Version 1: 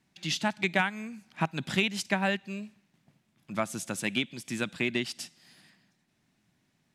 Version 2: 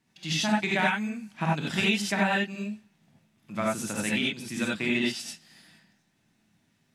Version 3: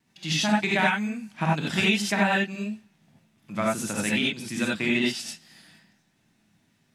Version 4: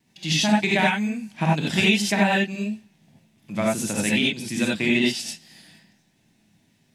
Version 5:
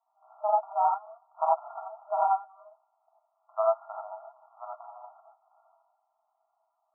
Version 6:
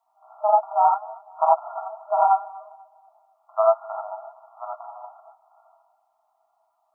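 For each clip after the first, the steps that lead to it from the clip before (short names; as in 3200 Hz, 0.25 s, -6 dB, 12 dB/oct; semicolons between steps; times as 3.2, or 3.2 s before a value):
non-linear reverb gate 0.11 s rising, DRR -4 dB; gain -2.5 dB
wow and flutter 26 cents; gain +2.5 dB
bell 1300 Hz -8.5 dB 0.64 oct; gain +4 dB
FFT band-pass 620–1400 Hz; gain +1.5 dB
darkening echo 0.245 s, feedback 50%, low-pass 1100 Hz, level -21 dB; gain +7 dB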